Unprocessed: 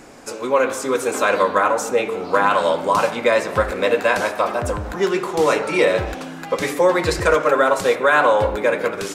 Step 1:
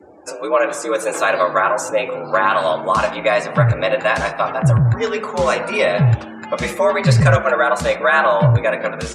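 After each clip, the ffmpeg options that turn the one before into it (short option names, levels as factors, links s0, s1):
-af "afftdn=nr=30:nf=-40,asubboost=boost=11.5:cutoff=79,afreqshift=60,volume=1.19"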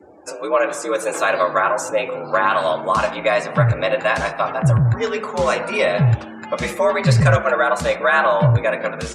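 -af "aeval=exprs='0.891*(cos(1*acos(clip(val(0)/0.891,-1,1)))-cos(1*PI/2))+0.00501*(cos(4*acos(clip(val(0)/0.891,-1,1)))-cos(4*PI/2))':c=same,volume=0.841"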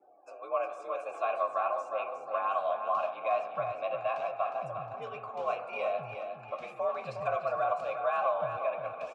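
-filter_complex "[0:a]asplit=3[s0][s1][s2];[s0]bandpass=f=730:t=q:w=8,volume=1[s3];[s1]bandpass=f=1090:t=q:w=8,volume=0.501[s4];[s2]bandpass=f=2440:t=q:w=8,volume=0.355[s5];[s3][s4][s5]amix=inputs=3:normalize=0,asplit=2[s6][s7];[s7]aecho=0:1:359|718|1077|1436:0.422|0.16|0.0609|0.0231[s8];[s6][s8]amix=inputs=2:normalize=0,volume=0.531"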